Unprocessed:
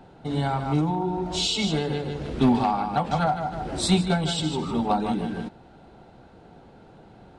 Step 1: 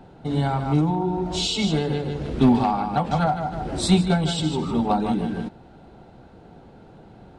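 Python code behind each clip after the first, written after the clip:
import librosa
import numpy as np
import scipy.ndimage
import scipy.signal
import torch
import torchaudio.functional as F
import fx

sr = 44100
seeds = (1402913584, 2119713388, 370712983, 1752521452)

y = fx.low_shelf(x, sr, hz=480.0, db=4.0)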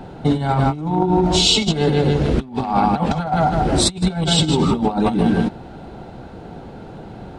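y = fx.over_compress(x, sr, threshold_db=-25.0, ratio=-0.5)
y = y * 10.0 ** (8.0 / 20.0)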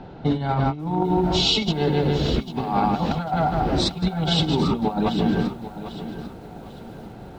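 y = scipy.signal.sosfilt(scipy.signal.butter(4, 5500.0, 'lowpass', fs=sr, output='sos'), x)
y = fx.echo_crushed(y, sr, ms=796, feedback_pct=35, bits=7, wet_db=-12.5)
y = y * 10.0 ** (-4.5 / 20.0)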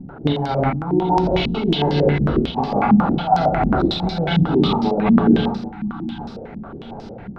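y = fx.spec_erase(x, sr, start_s=5.58, length_s=0.62, low_hz=350.0, high_hz=720.0)
y = fx.rev_schroeder(y, sr, rt60_s=0.56, comb_ms=27, drr_db=2.5)
y = fx.filter_held_lowpass(y, sr, hz=11.0, low_hz=220.0, high_hz=5200.0)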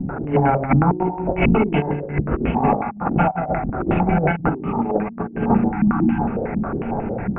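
y = scipy.signal.sosfilt(scipy.signal.butter(16, 2600.0, 'lowpass', fs=sr, output='sos'), x)
y = fx.over_compress(y, sr, threshold_db=-23.0, ratio=-0.5)
y = y * 10.0 ** (4.5 / 20.0)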